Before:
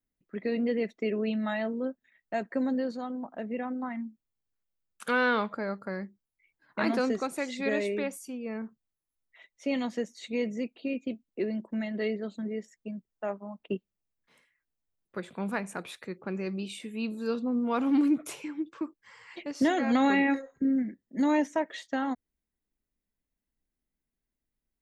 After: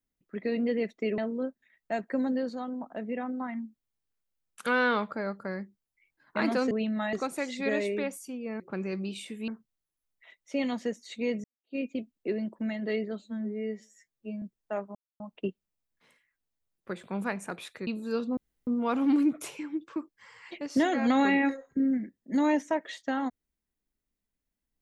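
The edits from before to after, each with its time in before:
1.18–1.60 s: move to 7.13 s
10.56–10.88 s: fade in exponential
12.34–12.94 s: stretch 2×
13.47 s: insert silence 0.25 s
16.14–17.02 s: move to 8.60 s
17.52 s: insert room tone 0.30 s

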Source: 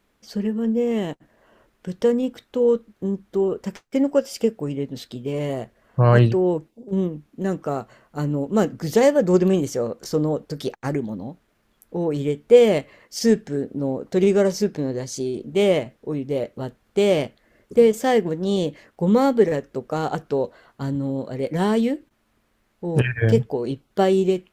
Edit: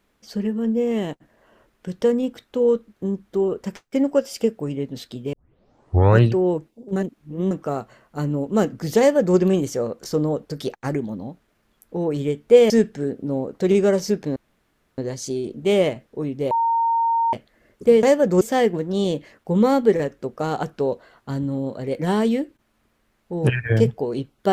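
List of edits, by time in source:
5.33 s: tape start 0.89 s
6.96–7.51 s: reverse
8.99–9.37 s: copy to 17.93 s
12.70–13.22 s: delete
14.88 s: insert room tone 0.62 s
16.41–17.23 s: bleep 920 Hz -16.5 dBFS

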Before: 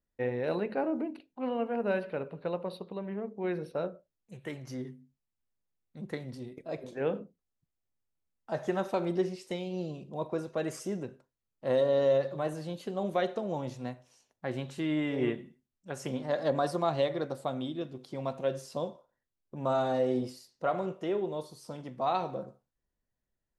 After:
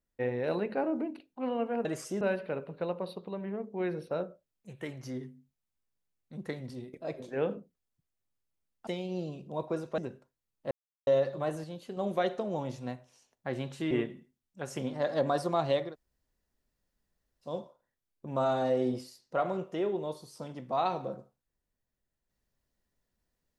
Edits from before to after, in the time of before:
8.51–9.49 s: delete
10.60–10.96 s: move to 1.85 s
11.69–12.05 s: mute
12.62–12.95 s: gain -4.5 dB
14.89–15.20 s: delete
17.17–18.78 s: room tone, crossfade 0.16 s

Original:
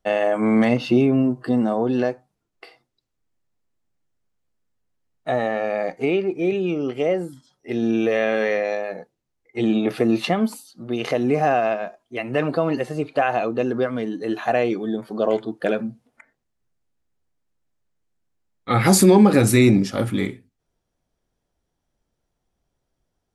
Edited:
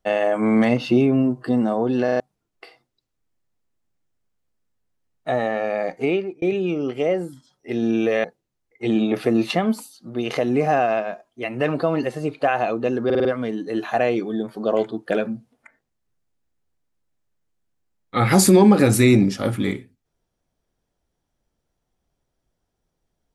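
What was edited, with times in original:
2.04 s: stutter in place 0.04 s, 4 plays
6.13–6.42 s: fade out
8.24–8.98 s: delete
13.79 s: stutter 0.05 s, 5 plays

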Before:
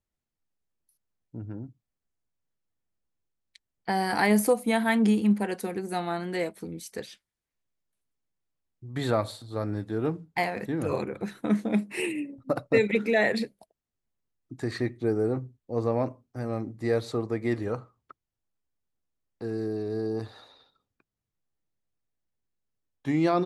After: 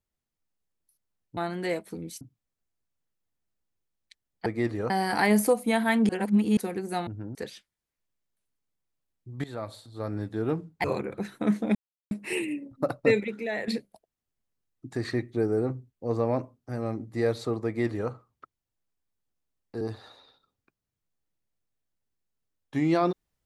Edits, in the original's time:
1.37–1.65 s: swap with 6.07–6.91 s
5.09–5.57 s: reverse
9.00–9.87 s: fade in, from -16.5 dB
10.40–10.87 s: delete
11.78 s: insert silence 0.36 s
12.90–13.35 s: gain -8.5 dB
17.33–17.77 s: copy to 3.90 s
19.48–20.13 s: delete

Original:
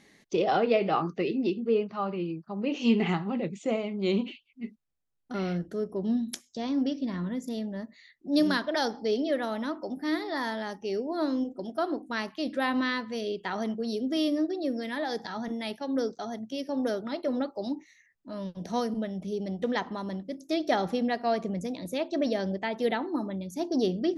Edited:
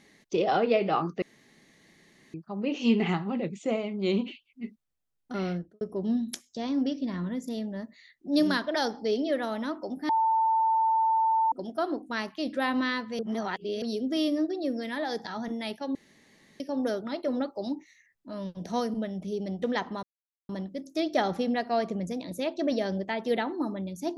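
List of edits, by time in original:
1.22–2.34 s: room tone
5.46–5.81 s: studio fade out
10.09–11.52 s: bleep 893 Hz -21 dBFS
13.19–13.82 s: reverse
15.95–16.60 s: room tone
20.03 s: insert silence 0.46 s

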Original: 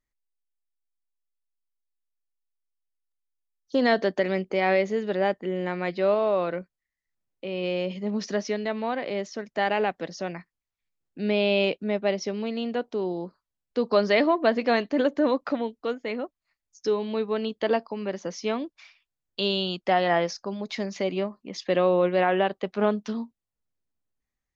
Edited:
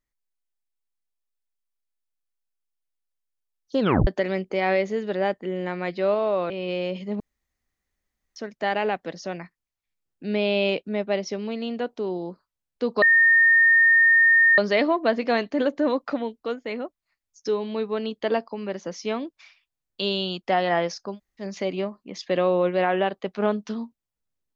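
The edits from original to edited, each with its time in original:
3.80 s: tape stop 0.27 s
6.50–7.45 s: delete
8.15–9.31 s: room tone
13.97 s: add tone 1.83 kHz -13 dBFS 1.56 s
20.54–20.81 s: room tone, crossfade 0.10 s

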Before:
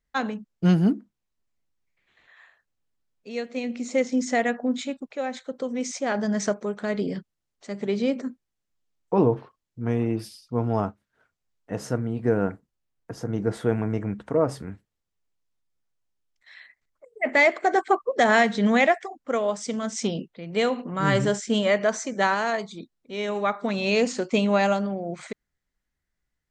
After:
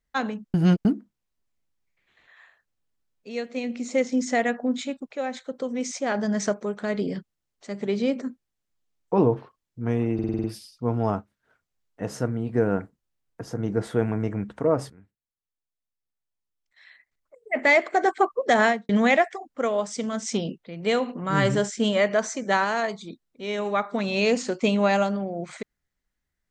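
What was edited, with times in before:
0.54–0.85 s: reverse
10.14 s: stutter 0.05 s, 7 plays
14.60–17.34 s: fade in quadratic, from -16 dB
18.31–18.59 s: studio fade out

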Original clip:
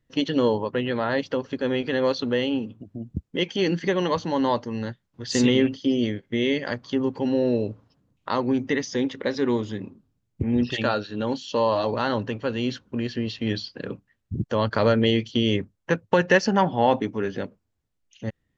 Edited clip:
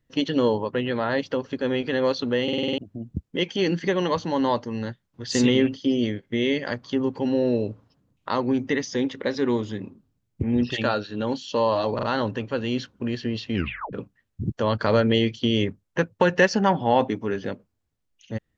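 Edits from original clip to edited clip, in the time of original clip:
2.43 s: stutter in place 0.05 s, 7 plays
11.95 s: stutter 0.04 s, 3 plays
13.46 s: tape stop 0.39 s

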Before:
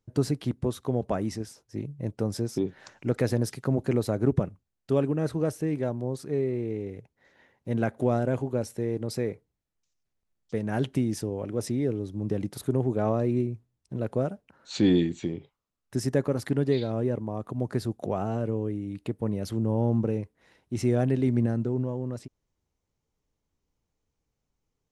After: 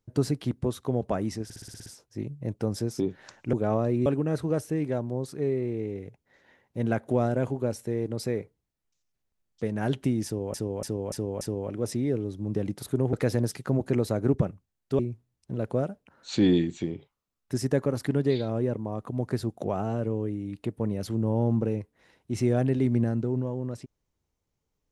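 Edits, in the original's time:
1.44 s: stutter 0.06 s, 8 plays
3.11–4.97 s: swap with 12.88–13.41 s
11.16–11.45 s: loop, 5 plays

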